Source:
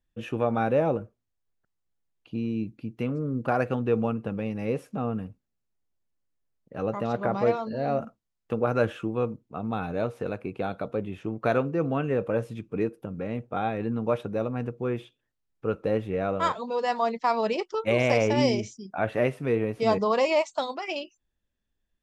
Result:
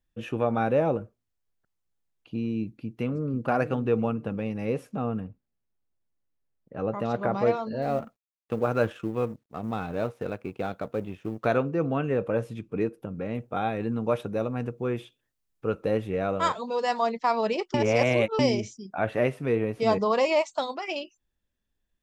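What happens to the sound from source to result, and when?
2.63–3.39 echo throw 0.49 s, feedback 30%, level -11.5 dB
5.2–6.99 high shelf 3600 Hz -11.5 dB
7.82–11.46 G.711 law mismatch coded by A
13.34–17.07 high shelf 5300 Hz +7 dB
17.74–18.39 reverse

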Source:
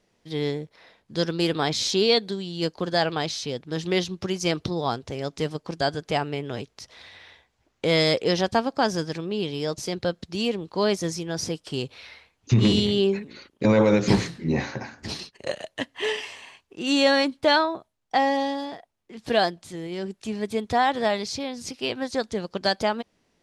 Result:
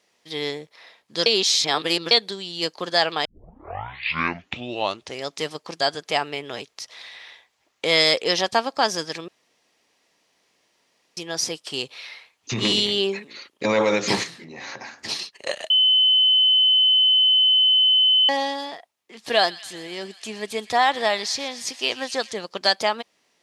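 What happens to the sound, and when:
1.26–2.11 reverse
3.25 tape start 1.99 s
9.28–11.17 room tone
14.23–14.95 compressor, threshold -33 dBFS
15.7–18.29 bleep 3040 Hz -20 dBFS
19.33–22.32 thin delay 0.123 s, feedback 76%, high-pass 1800 Hz, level -16.5 dB
whole clip: HPF 1100 Hz 6 dB/oct; notch 1500 Hz, Q 13; gain +7 dB

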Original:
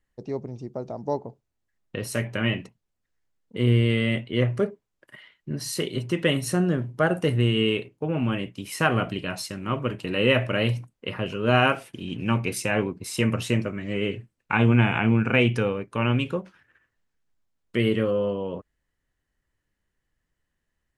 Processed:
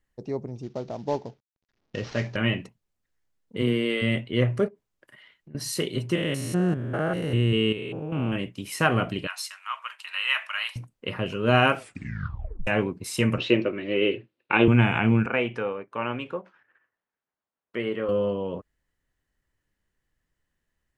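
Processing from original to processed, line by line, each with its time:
0.63–2.36 CVSD 32 kbps
3.61–4.01 HPF 130 Hz -> 320 Hz 24 dB/oct
4.68–5.55 compressor 4:1, threshold -48 dBFS
6.15–8.36 stepped spectrum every 0.2 s
9.27–10.76 steep high-pass 960 Hz
11.78 tape stop 0.89 s
13.38–14.68 speaker cabinet 180–4400 Hz, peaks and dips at 190 Hz -5 dB, 350 Hz +10 dB, 530 Hz +6 dB, 2700 Hz +6 dB, 3800 Hz +5 dB
15.26–18.09 band-pass 930 Hz, Q 0.73

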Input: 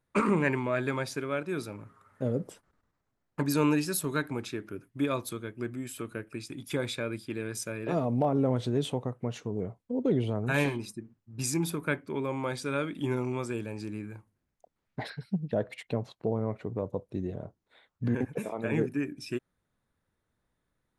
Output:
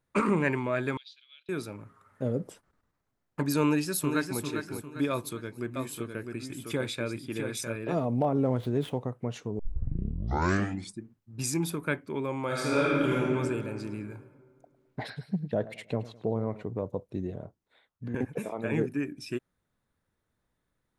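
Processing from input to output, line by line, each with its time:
0.97–1.49 Butterworth band-pass 3600 Hz, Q 3.3
3.63–4.41 echo throw 0.4 s, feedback 40%, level -6.5 dB
5.1–7.76 echo 0.656 s -5.5 dB
8.41–9.03 median filter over 9 samples
9.59 tape start 1.42 s
12.46–13.15 reverb throw, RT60 2.2 s, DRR -5.5 dB
13.72–16.63 warbling echo 0.106 s, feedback 40%, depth 75 cents, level -17.5 dB
17.23–18.14 fade out, to -9 dB

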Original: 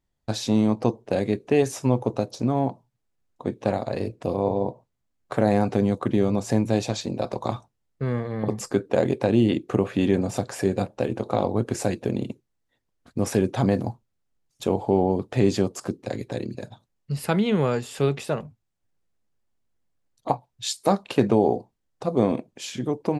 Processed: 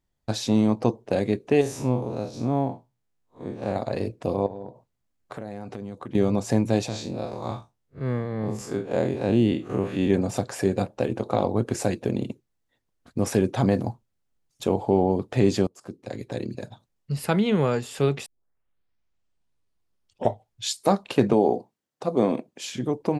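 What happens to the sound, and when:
1.61–3.76 time blur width 0.109 s
4.46–6.15 compressor 4:1, threshold -34 dBFS
6.88–10.1 time blur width 94 ms
15.67–16.46 fade in linear, from -22.5 dB
18.26 tape start 2.47 s
21.33–22.63 HPF 170 Hz

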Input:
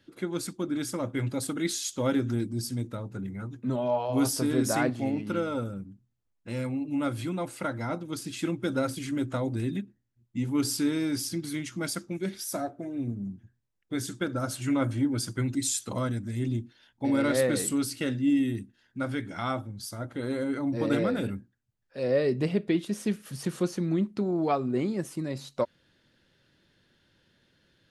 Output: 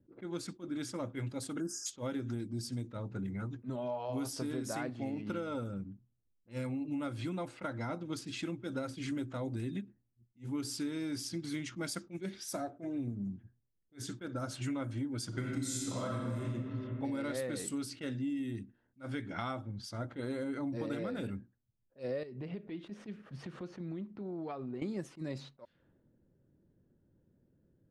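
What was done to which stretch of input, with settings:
1.6–1.86 spectral delete 1700–4800 Hz
15.28–16.48 reverb throw, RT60 2.1 s, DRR -4 dB
22.23–24.82 compressor 8:1, threshold -37 dBFS
whole clip: compressor 8:1, threshold -34 dBFS; low-pass opened by the level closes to 370 Hz, open at -33 dBFS; attack slew limiter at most 310 dB/s

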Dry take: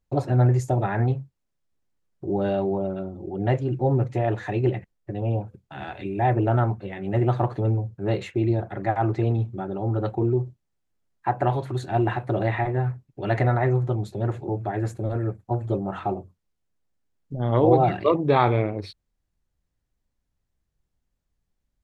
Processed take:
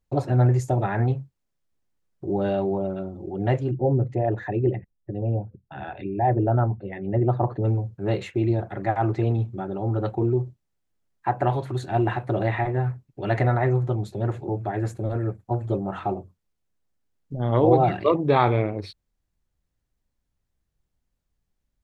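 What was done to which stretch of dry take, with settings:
3.71–7.64 formant sharpening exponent 1.5

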